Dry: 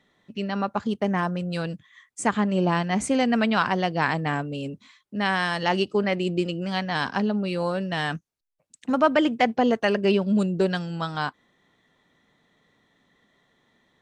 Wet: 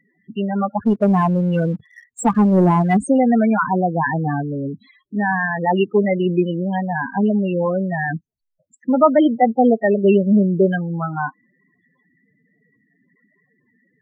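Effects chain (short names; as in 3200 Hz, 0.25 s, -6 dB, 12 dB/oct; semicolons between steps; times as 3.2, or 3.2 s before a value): loudest bins only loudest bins 8; 0.85–2.97 sample leveller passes 1; gain +7.5 dB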